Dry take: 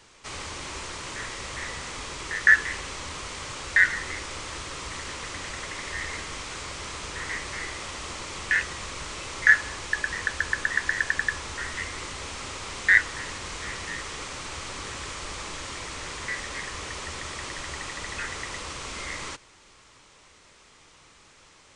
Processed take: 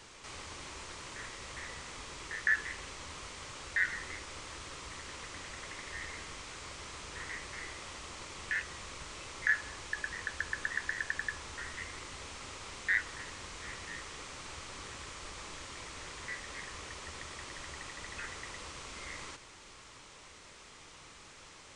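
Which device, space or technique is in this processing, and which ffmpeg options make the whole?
de-esser from a sidechain: -filter_complex "[0:a]asplit=2[a][b];[b]highpass=f=4.5k:w=0.5412,highpass=f=4.5k:w=1.3066,apad=whole_len=959573[c];[a][c]sidechaincompress=threshold=-50dB:ratio=8:attack=0.77:release=23,volume=1dB"

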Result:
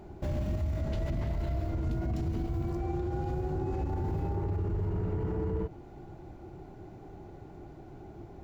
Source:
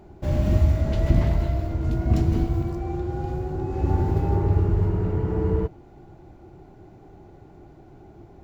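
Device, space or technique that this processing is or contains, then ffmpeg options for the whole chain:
stacked limiters: -af "alimiter=limit=-14dB:level=0:latency=1:release=369,alimiter=limit=-18.5dB:level=0:latency=1:release=17,alimiter=level_in=1dB:limit=-24dB:level=0:latency=1:release=63,volume=-1dB"

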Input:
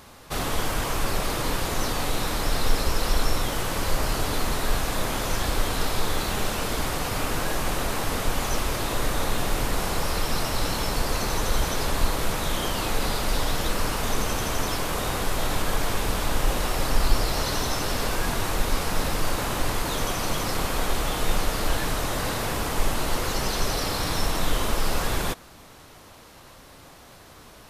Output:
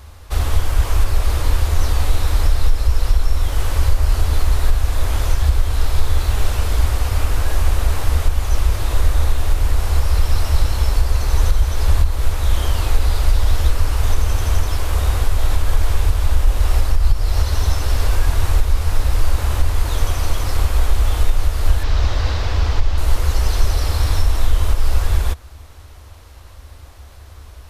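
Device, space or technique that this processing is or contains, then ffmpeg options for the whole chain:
car stereo with a boomy subwoofer: -filter_complex "[0:a]asettb=1/sr,asplit=3[a][b][c];[a]atrim=end=21.834[d];[b]atrim=start=21.83:end=22.98,asetpts=PTS-STARTPTS,afade=t=in:d=0.004:c=qsin,afade=t=out:st=1.146:d=0.004:c=qsin,highshelf=f=7.2k:t=q:w=1.5:g=-14[e];[c]atrim=start=22.976[f];[d][e]acrossfade=d=0.004:c1=hsin:c2=qsin[g];[g][f]acrossfade=d=0.004:c1=qsin:c2=hsin,lowshelf=f=110:t=q:w=3:g=13,alimiter=limit=-4dB:level=0:latency=1:release=320"

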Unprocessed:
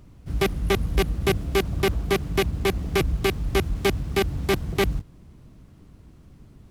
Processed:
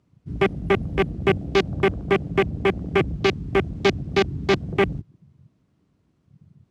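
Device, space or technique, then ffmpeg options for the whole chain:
over-cleaned archive recording: -af "highpass=110,lowpass=7.9k,afwtdn=0.02,volume=3.5dB"

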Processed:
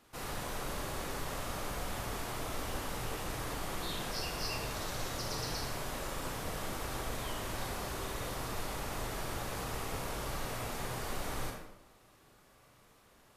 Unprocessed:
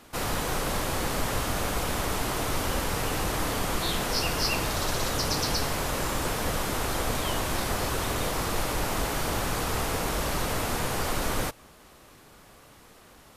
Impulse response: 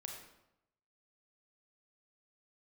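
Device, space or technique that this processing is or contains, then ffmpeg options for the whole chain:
bathroom: -filter_complex "[1:a]atrim=start_sample=2205[a];[0:a][a]afir=irnorm=-1:irlink=0,volume=-7dB"

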